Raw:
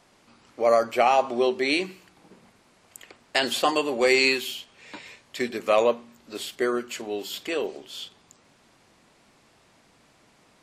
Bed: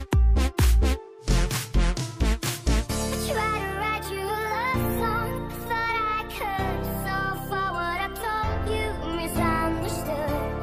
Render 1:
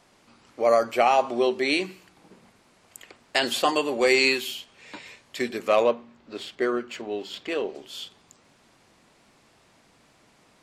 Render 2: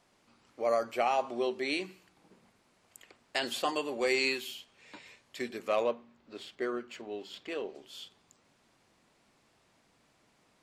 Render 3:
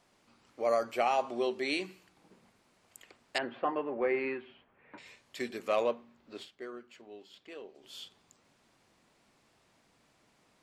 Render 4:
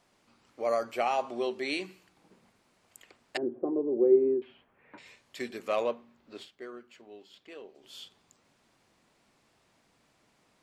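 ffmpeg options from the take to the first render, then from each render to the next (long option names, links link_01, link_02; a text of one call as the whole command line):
ffmpeg -i in.wav -filter_complex "[0:a]asettb=1/sr,asplit=3[link_01][link_02][link_03];[link_01]atrim=end=5.684[link_04];[link_02]atrim=start=5.68:end=7.75,asetpts=PTS-STARTPTS,afade=type=in:duration=0.004:curve=qsin,afade=type=out:start_time=2.066:duration=0.004:curve=qsin,adynamicsmooth=sensitivity=2.5:basefreq=4000[link_05];[link_03]atrim=start=7.746[link_06];[link_04][link_05]acrossfade=duration=0.004:curve1=hsin:curve2=qsin[link_07];[link_07][link_06]acrossfade=duration=0.004:curve1=qsin:curve2=hsin" out.wav
ffmpeg -i in.wav -af "volume=-9dB" out.wav
ffmpeg -i in.wav -filter_complex "[0:a]asettb=1/sr,asplit=3[link_01][link_02][link_03];[link_01]atrim=end=3.384[link_04];[link_02]atrim=start=3.38:end=4.98,asetpts=PTS-STARTPTS,afade=type=in:duration=0.004:curve=qsin,afade=type=out:start_time=1.596:duration=0.004:curve=qsin,lowpass=frequency=1900:width=0.5412,lowpass=frequency=1900:width=1.3066[link_05];[link_03]atrim=start=4.976[link_06];[link_04][link_05]acrossfade=duration=0.004:curve1=hsin:curve2=qsin[link_07];[link_07][link_06]acrossfade=duration=0.004:curve1=qsin:curve2=hsin,asplit=3[link_08][link_09][link_10];[link_08]atrim=end=6.72,asetpts=PTS-STARTPTS,afade=type=out:start_time=6.43:duration=0.29:curve=exp:silence=0.334965[link_11];[link_09]atrim=start=6.72:end=7.56,asetpts=PTS-STARTPTS,volume=-9.5dB[link_12];[link_10]atrim=start=7.56,asetpts=PTS-STARTPTS,afade=type=in:duration=0.29:curve=exp:silence=0.334965[link_13];[link_11][link_12][link_13]concat=n=3:v=0:a=1" out.wav
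ffmpeg -i in.wav -filter_complex "[0:a]asettb=1/sr,asplit=3[link_01][link_02][link_03];[link_01]atrim=end=3.374[link_04];[link_02]atrim=start=3.37:end=4.42,asetpts=PTS-STARTPTS,afade=type=in:duration=0.004:curve=qsin,afade=type=out:start_time=1.046:duration=0.004:curve=qsin,lowpass=frequency=370:width_type=q:width=4.2[link_05];[link_03]atrim=start=4.416[link_06];[link_04][link_05]acrossfade=duration=0.004:curve1=hsin:curve2=qsin[link_07];[link_07][link_06]acrossfade=duration=0.004:curve1=qsin:curve2=hsin" out.wav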